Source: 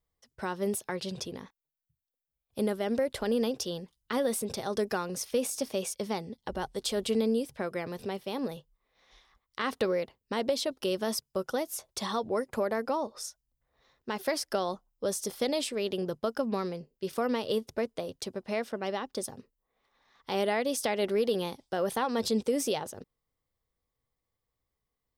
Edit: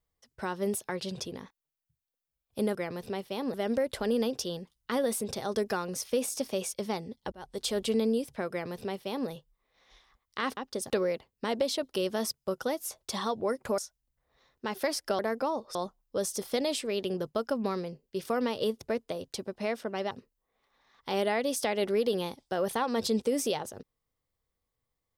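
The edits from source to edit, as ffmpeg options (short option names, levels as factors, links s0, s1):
-filter_complex "[0:a]asplit=10[s0][s1][s2][s3][s4][s5][s6][s7][s8][s9];[s0]atrim=end=2.752[s10];[s1]atrim=start=7.708:end=8.502[s11];[s2]atrim=start=2.748:end=6.53,asetpts=PTS-STARTPTS,afade=t=out:st=3.778:d=0.004:c=hsin[s12];[s3]atrim=start=6.53:end=9.782,asetpts=PTS-STARTPTS,afade=t=in:d=0.3[s13];[s4]atrim=start=18.988:end=19.322[s14];[s5]atrim=start=9.778:end=12.662[s15];[s6]atrim=start=13.218:end=14.632[s16];[s7]atrim=start=12.658:end=13.222[s17];[s8]atrim=start=14.628:end=18.992[s18];[s9]atrim=start=19.318[s19];[s10][s11]acrossfade=d=0.004:c1=hsin:c2=hsin[s20];[s12][s13]concat=n=2:v=0:a=1[s21];[s20][s21]acrossfade=d=0.004:c1=hsin:c2=hsin[s22];[s22][s14]acrossfade=d=0.004:c1=hsin:c2=hsin[s23];[s23][s15]acrossfade=d=0.004:c1=hsin:c2=hsin[s24];[s24][s16]acrossfade=d=0.004:c1=hsin:c2=hsin[s25];[s25][s17]acrossfade=d=0.004:c1=hsin:c2=hsin[s26];[s26][s18]acrossfade=d=0.004:c1=hsin:c2=hsin[s27];[s27][s19]acrossfade=d=0.004:c1=hsin:c2=hsin"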